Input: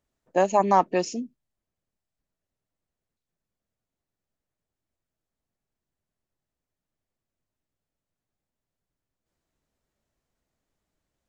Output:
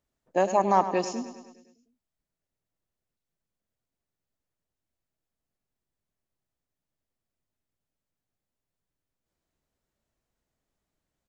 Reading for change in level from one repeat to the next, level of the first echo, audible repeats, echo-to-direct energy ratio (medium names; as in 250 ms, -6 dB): -4.5 dB, -12.0 dB, 6, -10.0 dB